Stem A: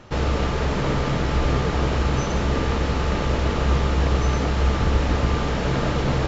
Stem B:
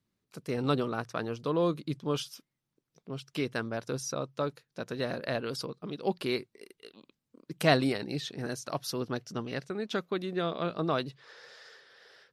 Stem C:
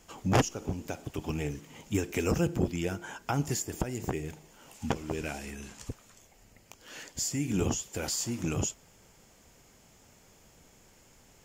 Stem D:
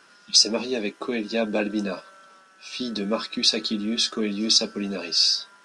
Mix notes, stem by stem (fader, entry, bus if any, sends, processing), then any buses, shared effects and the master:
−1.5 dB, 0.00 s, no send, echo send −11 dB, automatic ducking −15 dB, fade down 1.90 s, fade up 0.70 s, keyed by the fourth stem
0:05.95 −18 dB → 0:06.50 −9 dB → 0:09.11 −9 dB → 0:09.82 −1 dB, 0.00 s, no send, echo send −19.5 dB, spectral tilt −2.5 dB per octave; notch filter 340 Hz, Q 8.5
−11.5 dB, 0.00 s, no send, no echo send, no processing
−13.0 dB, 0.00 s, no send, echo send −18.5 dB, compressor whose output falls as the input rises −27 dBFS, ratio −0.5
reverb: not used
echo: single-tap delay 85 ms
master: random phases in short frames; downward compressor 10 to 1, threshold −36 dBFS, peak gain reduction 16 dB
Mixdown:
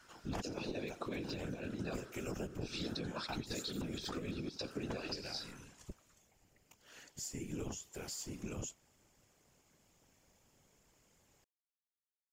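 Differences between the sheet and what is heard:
stem A: muted
stem B: muted

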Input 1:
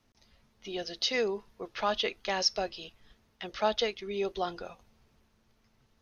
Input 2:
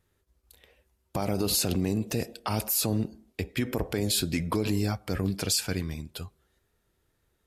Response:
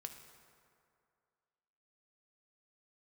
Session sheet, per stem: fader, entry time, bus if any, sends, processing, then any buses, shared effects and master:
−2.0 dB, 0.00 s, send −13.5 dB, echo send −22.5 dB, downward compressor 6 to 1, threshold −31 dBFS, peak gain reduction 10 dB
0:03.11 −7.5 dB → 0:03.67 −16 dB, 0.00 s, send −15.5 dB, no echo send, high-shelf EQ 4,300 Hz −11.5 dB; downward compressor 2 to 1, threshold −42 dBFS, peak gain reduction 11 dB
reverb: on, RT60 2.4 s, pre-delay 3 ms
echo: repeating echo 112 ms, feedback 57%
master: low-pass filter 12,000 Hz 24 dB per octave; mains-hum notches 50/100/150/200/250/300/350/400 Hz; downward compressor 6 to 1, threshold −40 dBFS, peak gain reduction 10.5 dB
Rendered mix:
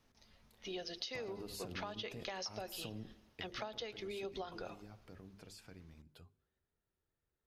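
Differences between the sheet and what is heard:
stem 1: send off
master: missing low-pass filter 12,000 Hz 24 dB per octave

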